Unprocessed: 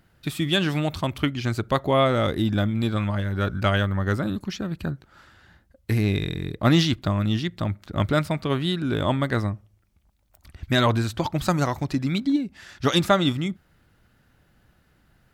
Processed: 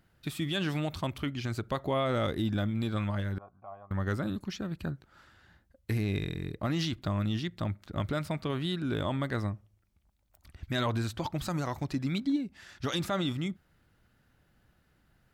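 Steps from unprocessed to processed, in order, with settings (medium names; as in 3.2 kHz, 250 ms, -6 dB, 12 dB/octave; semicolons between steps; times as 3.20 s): 6.11–6.84 s: band-stop 3.5 kHz, Q 8.4; peak limiter -14.5 dBFS, peak gain reduction 9 dB; 3.38–3.91 s: cascade formant filter a; trim -6.5 dB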